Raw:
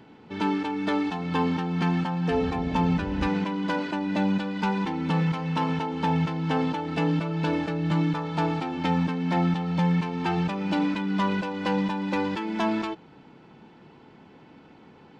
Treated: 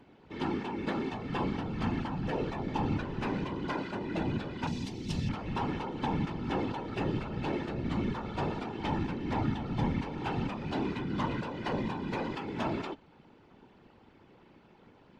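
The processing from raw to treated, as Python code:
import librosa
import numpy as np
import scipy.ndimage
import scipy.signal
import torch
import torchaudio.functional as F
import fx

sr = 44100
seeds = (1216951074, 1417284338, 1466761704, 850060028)

y = fx.whisperise(x, sr, seeds[0])
y = fx.curve_eq(y, sr, hz=(220.0, 1300.0, 5500.0), db=(0, -15, 14), at=(4.67, 5.29))
y = F.gain(torch.from_numpy(y), -7.5).numpy()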